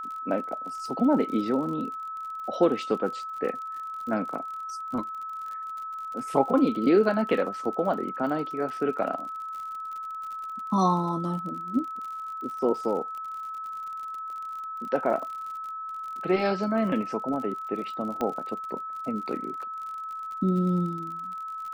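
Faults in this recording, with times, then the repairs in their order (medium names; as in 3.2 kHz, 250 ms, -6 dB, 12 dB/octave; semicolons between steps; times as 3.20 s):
crackle 48 per s -36 dBFS
whine 1.3 kHz -33 dBFS
18.21 s: pop -17 dBFS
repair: de-click; band-stop 1.3 kHz, Q 30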